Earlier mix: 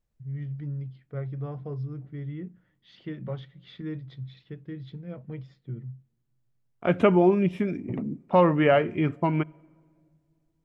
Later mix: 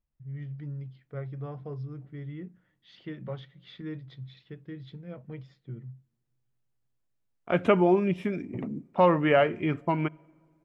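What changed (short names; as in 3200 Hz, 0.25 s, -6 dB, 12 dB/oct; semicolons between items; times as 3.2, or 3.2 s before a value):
second voice: entry +0.65 s; master: add low shelf 390 Hz -4.5 dB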